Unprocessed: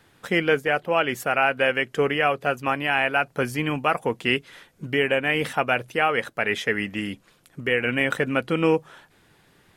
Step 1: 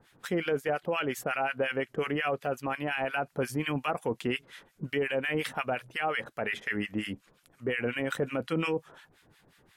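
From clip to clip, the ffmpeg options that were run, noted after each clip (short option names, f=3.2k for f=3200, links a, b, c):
-filter_complex "[0:a]acrossover=split=1100[a][b];[a]aeval=exprs='val(0)*(1-1/2+1/2*cos(2*PI*5.6*n/s))':c=same[c];[b]aeval=exprs='val(0)*(1-1/2-1/2*cos(2*PI*5.6*n/s))':c=same[d];[c][d]amix=inputs=2:normalize=0,alimiter=limit=-20dB:level=0:latency=1:release=17"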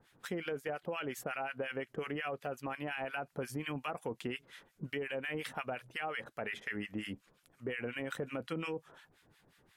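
-af "acompressor=threshold=-29dB:ratio=6,volume=-5dB"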